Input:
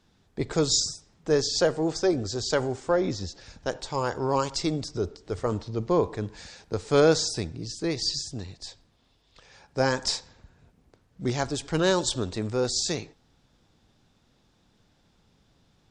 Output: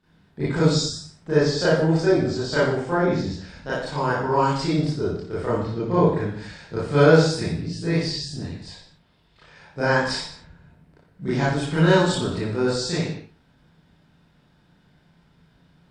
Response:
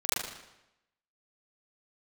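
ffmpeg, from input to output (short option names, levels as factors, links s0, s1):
-filter_complex "[0:a]equalizer=f=160:t=o:w=0.67:g=11,equalizer=f=1600:t=o:w=0.67:g=4,equalizer=f=6300:t=o:w=0.67:g=-10[s0];[1:a]atrim=start_sample=2205,afade=t=out:st=0.42:d=0.01,atrim=end_sample=18963,asetrate=57330,aresample=44100[s1];[s0][s1]afir=irnorm=-1:irlink=0,volume=0.668"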